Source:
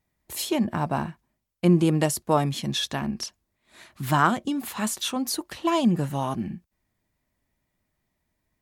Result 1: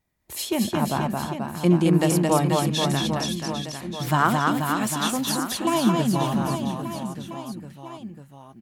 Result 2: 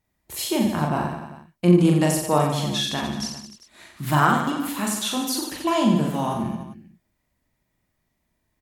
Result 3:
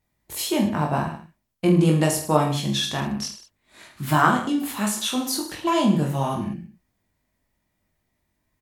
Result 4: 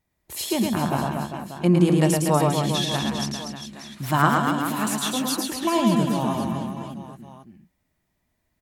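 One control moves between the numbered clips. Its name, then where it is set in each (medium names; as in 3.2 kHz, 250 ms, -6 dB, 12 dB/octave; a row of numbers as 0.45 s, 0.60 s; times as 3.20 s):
reverse bouncing-ball echo, first gap: 220 ms, 40 ms, 20 ms, 110 ms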